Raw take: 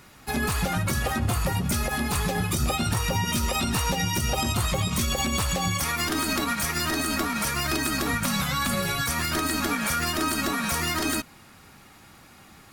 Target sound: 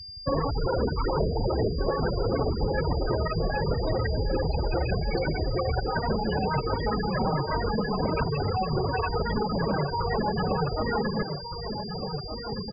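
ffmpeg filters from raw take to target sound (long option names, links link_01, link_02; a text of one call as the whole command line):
ffmpeg -i in.wav -filter_complex "[0:a]asplit=2[link_01][link_02];[link_02]aeval=exprs='0.2*sin(PI/2*7.94*val(0)/0.2)':channel_layout=same,volume=-3.5dB[link_03];[link_01][link_03]amix=inputs=2:normalize=0,adynamicequalizer=threshold=0.00891:dfrequency=670:dqfactor=3.5:tfrequency=670:tqfactor=3.5:attack=5:release=100:ratio=0.375:range=3:mode=boostabove:tftype=bell,asetrate=29433,aresample=44100,atempo=1.49831,highshelf=frequency=2600:gain=-6.5,acontrast=62,afftfilt=real='re*gte(hypot(re,im),0.447)':imag='im*gte(hypot(re,im),0.447)':win_size=1024:overlap=0.75,bandreject=frequency=59.7:width_type=h:width=4,bandreject=frequency=119.4:width_type=h:width=4,bandreject=frequency=179.1:width_type=h:width=4,bandreject=frequency=238.8:width_type=h:width=4,bandreject=frequency=298.5:width_type=h:width=4,bandreject=frequency=358.2:width_type=h:width=4,bandreject=frequency=417.9:width_type=h:width=4,bandreject=frequency=477.6:width_type=h:width=4,aeval=exprs='val(0)+0.0178*sin(2*PI*4800*n/s)':channel_layout=same,asplit=2[link_04][link_05];[link_05]adelay=1516,volume=-8dB,highshelf=frequency=4000:gain=-34.1[link_06];[link_04][link_06]amix=inputs=2:normalize=0,acompressor=threshold=-18dB:ratio=4,volume=-4.5dB" out.wav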